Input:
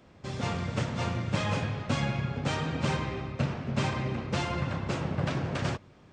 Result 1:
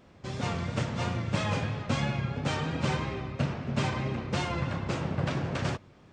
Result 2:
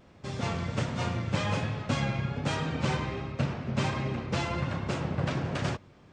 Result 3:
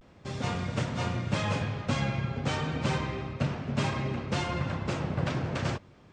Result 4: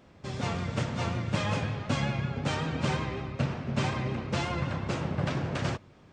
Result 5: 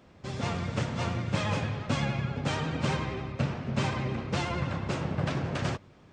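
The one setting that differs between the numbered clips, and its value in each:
vibrato, rate: 3, 1.3, 0.32, 5.4, 11 Hz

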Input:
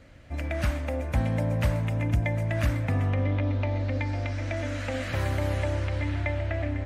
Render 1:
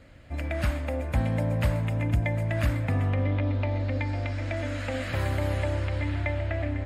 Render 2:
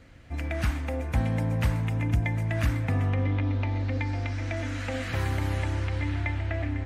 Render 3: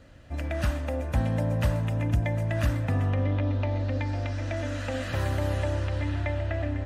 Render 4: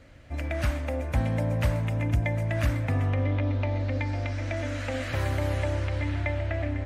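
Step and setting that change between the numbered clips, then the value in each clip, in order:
notch, frequency: 5900, 590, 2200, 190 Hz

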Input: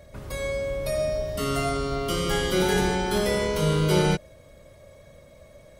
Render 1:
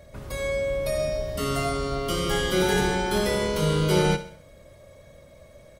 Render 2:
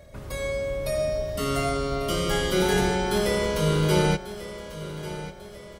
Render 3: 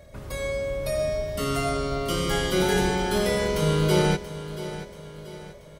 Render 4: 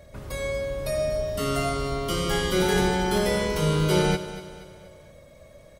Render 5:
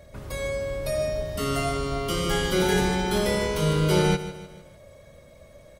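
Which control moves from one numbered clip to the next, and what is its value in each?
feedback echo, time: 67, 1143, 682, 238, 151 ms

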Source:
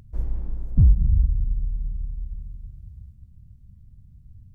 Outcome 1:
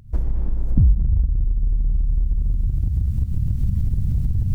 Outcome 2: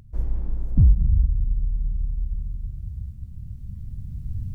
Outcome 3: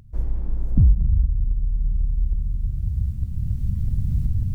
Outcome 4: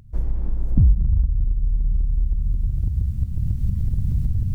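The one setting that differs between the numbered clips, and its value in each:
recorder AGC, rising by: 87, 5.5, 14, 35 dB/s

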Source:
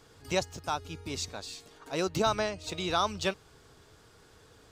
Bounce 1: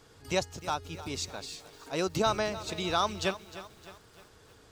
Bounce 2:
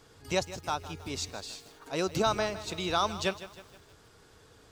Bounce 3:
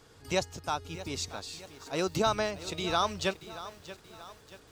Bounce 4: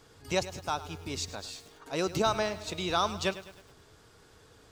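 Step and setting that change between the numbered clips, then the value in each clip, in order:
lo-fi delay, time: 0.306, 0.158, 0.631, 0.104 s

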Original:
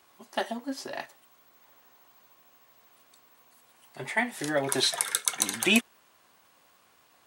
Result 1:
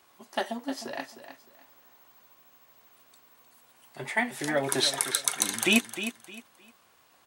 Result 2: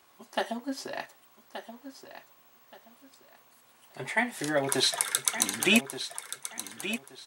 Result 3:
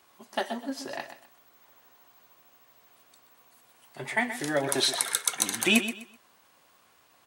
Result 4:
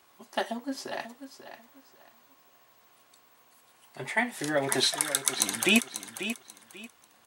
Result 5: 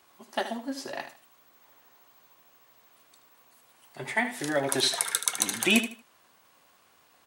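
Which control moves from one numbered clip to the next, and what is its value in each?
feedback echo, time: 308, 1176, 126, 540, 77 ms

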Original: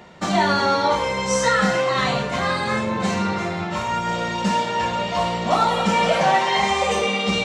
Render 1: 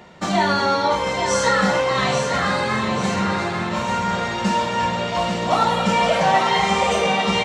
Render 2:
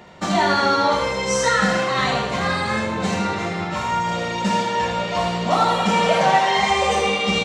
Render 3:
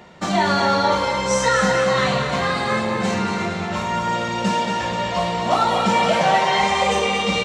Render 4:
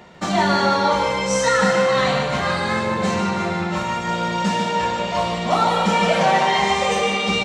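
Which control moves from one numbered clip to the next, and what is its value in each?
feedback echo, time: 841, 79, 231, 149 ms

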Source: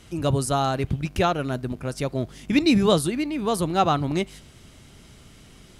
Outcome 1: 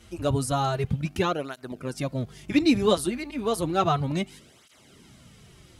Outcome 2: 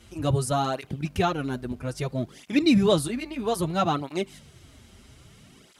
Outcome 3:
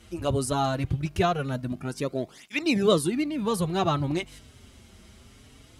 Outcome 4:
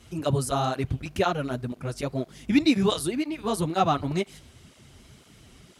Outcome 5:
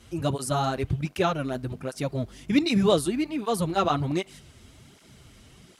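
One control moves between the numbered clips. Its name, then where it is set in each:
tape flanging out of phase, nulls at: 0.32, 0.61, 0.2, 2, 1.3 Hz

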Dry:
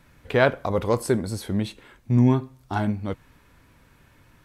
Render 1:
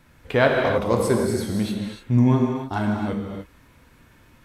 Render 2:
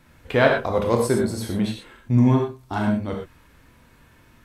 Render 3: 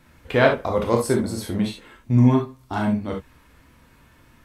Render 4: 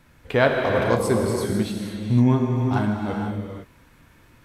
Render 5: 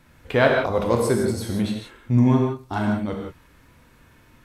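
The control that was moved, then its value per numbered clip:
non-linear reverb, gate: 330, 140, 90, 530, 200 ms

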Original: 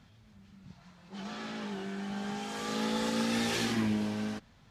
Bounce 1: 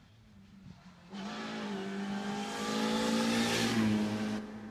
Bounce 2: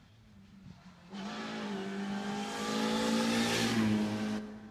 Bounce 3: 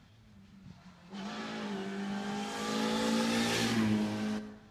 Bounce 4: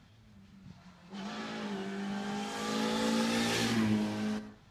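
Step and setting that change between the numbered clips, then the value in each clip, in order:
plate-style reverb, RT60: 5.2, 2.4, 1.1, 0.51 s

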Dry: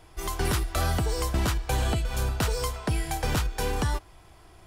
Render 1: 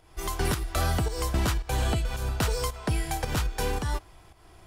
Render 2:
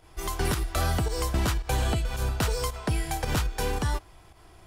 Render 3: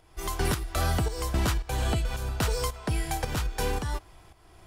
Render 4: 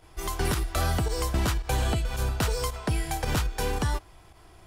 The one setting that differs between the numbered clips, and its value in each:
pump, release: 251, 99, 452, 60 ms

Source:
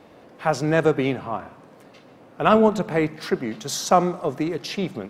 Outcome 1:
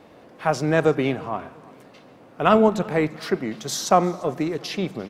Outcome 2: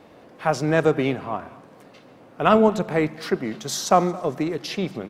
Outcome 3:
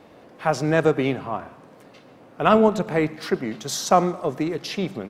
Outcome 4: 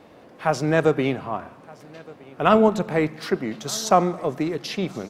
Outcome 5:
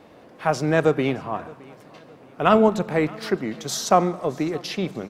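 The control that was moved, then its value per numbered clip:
feedback echo, time: 0.345, 0.226, 0.112, 1.217, 0.617 s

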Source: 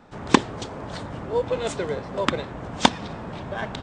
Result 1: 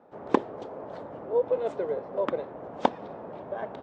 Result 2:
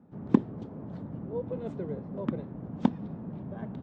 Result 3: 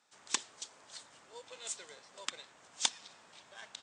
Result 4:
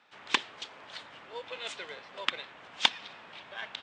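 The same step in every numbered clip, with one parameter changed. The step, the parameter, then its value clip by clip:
band-pass, frequency: 540, 190, 7700, 2900 Hz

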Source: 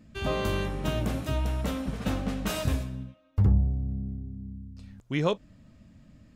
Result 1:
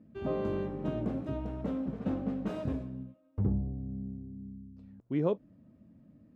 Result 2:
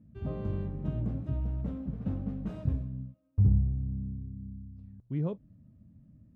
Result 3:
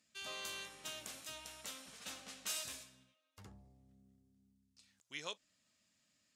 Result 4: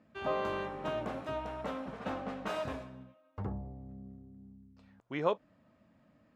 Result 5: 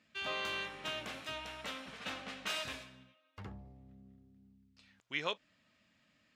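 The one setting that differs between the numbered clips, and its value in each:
band-pass, frequency: 310, 120, 7500, 870, 2700 Hz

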